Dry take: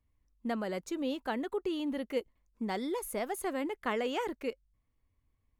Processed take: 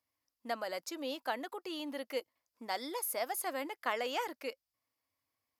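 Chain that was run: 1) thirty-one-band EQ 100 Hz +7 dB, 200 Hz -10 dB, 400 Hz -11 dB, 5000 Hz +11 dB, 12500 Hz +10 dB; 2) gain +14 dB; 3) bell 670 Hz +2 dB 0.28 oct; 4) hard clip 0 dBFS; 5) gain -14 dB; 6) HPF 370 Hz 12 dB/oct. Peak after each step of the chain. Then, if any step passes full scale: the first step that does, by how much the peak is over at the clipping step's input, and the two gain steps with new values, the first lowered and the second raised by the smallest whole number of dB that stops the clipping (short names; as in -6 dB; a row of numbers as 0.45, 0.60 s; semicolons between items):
-19.5, -5.5, -5.5, -5.5, -19.5, -19.0 dBFS; no overload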